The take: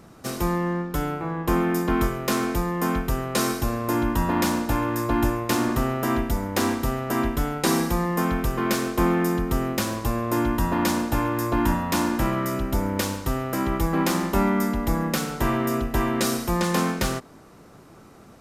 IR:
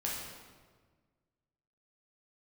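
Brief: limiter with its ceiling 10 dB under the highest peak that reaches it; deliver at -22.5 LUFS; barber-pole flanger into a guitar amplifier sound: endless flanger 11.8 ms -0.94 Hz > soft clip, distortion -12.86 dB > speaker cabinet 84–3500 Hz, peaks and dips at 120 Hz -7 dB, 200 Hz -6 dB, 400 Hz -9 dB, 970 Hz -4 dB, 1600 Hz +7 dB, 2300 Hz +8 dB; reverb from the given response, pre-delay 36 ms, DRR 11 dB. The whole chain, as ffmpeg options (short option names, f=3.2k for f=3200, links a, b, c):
-filter_complex "[0:a]alimiter=limit=-17.5dB:level=0:latency=1,asplit=2[a][b];[1:a]atrim=start_sample=2205,adelay=36[c];[b][c]afir=irnorm=-1:irlink=0,volume=-14.5dB[d];[a][d]amix=inputs=2:normalize=0,asplit=2[e][f];[f]adelay=11.8,afreqshift=-0.94[g];[e][g]amix=inputs=2:normalize=1,asoftclip=threshold=-28dB,highpass=84,equalizer=f=120:t=q:w=4:g=-7,equalizer=f=200:t=q:w=4:g=-6,equalizer=f=400:t=q:w=4:g=-9,equalizer=f=970:t=q:w=4:g=-4,equalizer=f=1.6k:t=q:w=4:g=7,equalizer=f=2.3k:t=q:w=4:g=8,lowpass=f=3.5k:w=0.5412,lowpass=f=3.5k:w=1.3066,volume=12.5dB"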